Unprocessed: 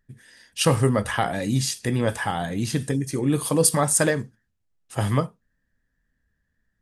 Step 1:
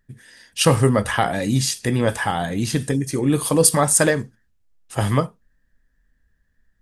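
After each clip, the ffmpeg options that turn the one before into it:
-af "asubboost=boost=2.5:cutoff=59,volume=4dB"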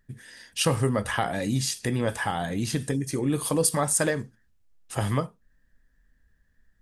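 -af "acompressor=threshold=-34dB:ratio=1.5"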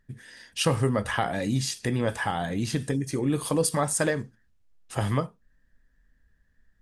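-af "highshelf=f=10k:g=-9.5"

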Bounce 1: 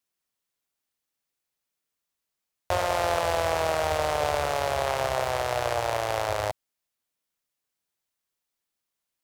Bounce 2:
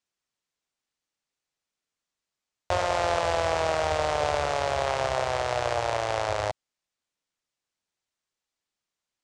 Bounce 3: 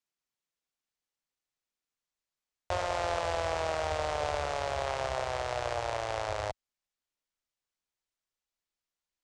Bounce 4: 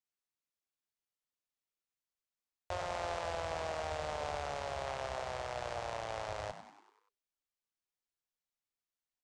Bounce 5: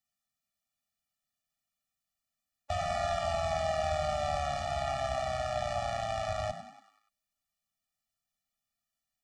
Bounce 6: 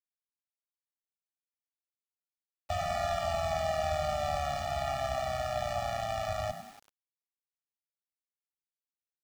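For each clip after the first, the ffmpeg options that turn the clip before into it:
-af "lowpass=f=8k:w=0.5412,lowpass=f=8k:w=1.3066"
-af "asubboost=boost=2.5:cutoff=74,volume=-6dB"
-filter_complex "[0:a]asplit=7[a][b][c][d][e][f][g];[b]adelay=96,afreqshift=65,volume=-11dB[h];[c]adelay=192,afreqshift=130,volume=-16.4dB[i];[d]adelay=288,afreqshift=195,volume=-21.7dB[j];[e]adelay=384,afreqshift=260,volume=-27.1dB[k];[f]adelay=480,afreqshift=325,volume=-32.4dB[l];[g]adelay=576,afreqshift=390,volume=-37.8dB[m];[a][h][i][j][k][l][m]amix=inputs=7:normalize=0,volume=-7dB"
-af "afftfilt=real='re*eq(mod(floor(b*sr/1024/280),2),0)':imag='im*eq(mod(floor(b*sr/1024/280),2),0)':win_size=1024:overlap=0.75,volume=9dB"
-af "acrusher=bits=8:mix=0:aa=0.000001"

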